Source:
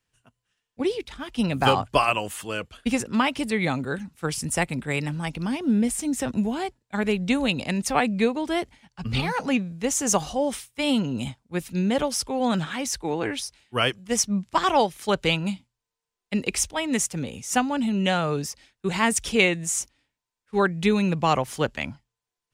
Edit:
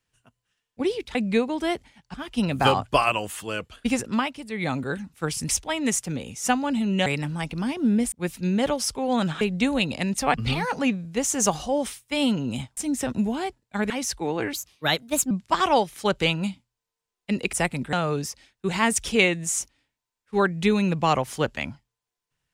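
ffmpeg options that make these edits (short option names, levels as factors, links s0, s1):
-filter_complex "[0:a]asplit=16[s0][s1][s2][s3][s4][s5][s6][s7][s8][s9][s10][s11][s12][s13][s14][s15];[s0]atrim=end=1.152[s16];[s1]atrim=start=8.018:end=9.012[s17];[s2]atrim=start=1.148:end=3.38,asetpts=PTS-STARTPTS,afade=t=out:st=1.962:d=0.27:silence=0.298538[s18];[s3]atrim=start=3.38:end=3.49,asetpts=PTS-STARTPTS,volume=0.299[s19];[s4]atrim=start=3.49:end=4.502,asetpts=PTS-STARTPTS,afade=t=in:d=0.27:silence=0.298538[s20];[s5]atrim=start=16.558:end=18.132[s21];[s6]atrim=start=4.898:end=5.962[s22];[s7]atrim=start=11.438:end=12.732[s23];[s8]atrim=start=7.088:end=8.022[s24];[s9]atrim=start=9.008:end=11.442[s25];[s10]atrim=start=5.958:end=7.092[s26];[s11]atrim=start=12.728:end=13.364[s27];[s12]atrim=start=13.36:end=14.34,asetpts=PTS-STARTPTS,asetrate=55566,aresample=44100[s28];[s13]atrim=start=14.336:end=16.562[s29];[s14]atrim=start=4.498:end=4.902[s30];[s15]atrim=start=18.128[s31];[s16][s17]acrossfade=d=0.004:c1=hsin:c2=hsin[s32];[s18][s19][s20]concat=n=3:v=0:a=1[s33];[s32][s33]acrossfade=d=0.004:c1=hsin:c2=hsin[s34];[s34][s21]acrossfade=d=0.004:c1=hsin:c2=hsin[s35];[s35][s22]acrossfade=d=0.004:c1=hsin:c2=hsin[s36];[s36][s23]acrossfade=d=0.004:c1=hsin:c2=hsin[s37];[s37][s24]acrossfade=d=0.004:c1=hsin:c2=hsin[s38];[s38][s25]acrossfade=d=0.004:c1=hsin:c2=hsin[s39];[s39][s26]acrossfade=d=0.004:c1=hsin:c2=hsin[s40];[s40][s27]acrossfade=d=0.004:c1=hsin:c2=hsin[s41];[s41][s28]acrossfade=d=0.004:c1=hsin:c2=hsin[s42];[s42][s29]acrossfade=d=0.004:c1=hsin:c2=hsin[s43];[s43][s30]acrossfade=d=0.004:c1=hsin:c2=hsin[s44];[s44][s31]acrossfade=d=0.004:c1=hsin:c2=hsin"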